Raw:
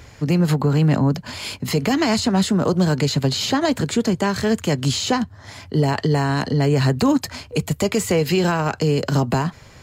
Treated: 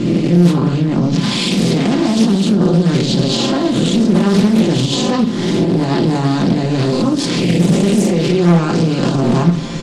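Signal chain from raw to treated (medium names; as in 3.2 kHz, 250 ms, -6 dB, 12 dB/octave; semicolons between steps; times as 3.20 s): reverse spectral sustain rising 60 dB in 0.94 s; recorder AGC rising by 14 dB/s; elliptic low-pass 9.8 kHz; peaking EQ 1.7 kHz -3.5 dB 0.77 oct; hum notches 50/100/150 Hz; comb 5.8 ms, depth 74%; in parallel at -2 dB: level held to a coarse grid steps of 22 dB; on the sum: small resonant body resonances 260/3400 Hz, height 17 dB, ringing for 45 ms; peak limiter -14 dBFS, peak gain reduction 18.5 dB; speakerphone echo 290 ms, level -14 dB; simulated room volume 500 m³, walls furnished, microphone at 1.2 m; loudspeaker Doppler distortion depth 0.5 ms; trim +5 dB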